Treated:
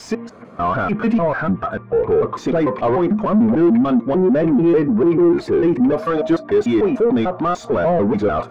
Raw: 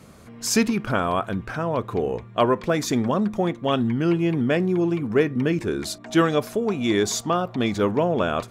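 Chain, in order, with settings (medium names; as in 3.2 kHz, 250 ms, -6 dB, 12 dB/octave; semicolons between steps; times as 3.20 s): slices played last to first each 148 ms, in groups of 4; overdrive pedal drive 33 dB, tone 1.3 kHz, clips at -6.5 dBFS; spectral contrast expander 1.5:1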